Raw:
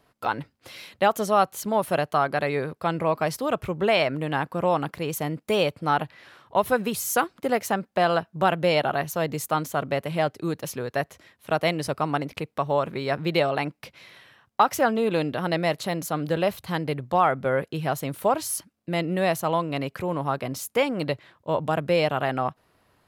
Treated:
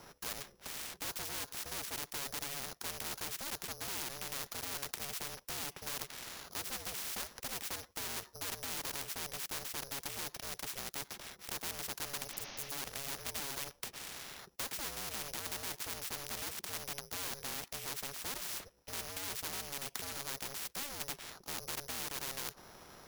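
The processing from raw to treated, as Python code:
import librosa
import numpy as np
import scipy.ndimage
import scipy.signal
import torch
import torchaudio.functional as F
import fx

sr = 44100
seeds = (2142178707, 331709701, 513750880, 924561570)

y = np.r_[np.sort(x[:len(x) // 8 * 8].reshape(-1, 8), axis=1).ravel(), x[len(x) // 8 * 8:]]
y = fx.spec_repair(y, sr, seeds[0], start_s=12.35, length_s=0.35, low_hz=240.0, high_hz=6400.0, source='before')
y = y * np.sin(2.0 * np.pi * 280.0 * np.arange(len(y)) / sr)
y = np.clip(10.0 ** (26.0 / 20.0) * y, -1.0, 1.0) / 10.0 ** (26.0 / 20.0)
y = fx.spectral_comp(y, sr, ratio=4.0)
y = y * librosa.db_to_amplitude(8.5)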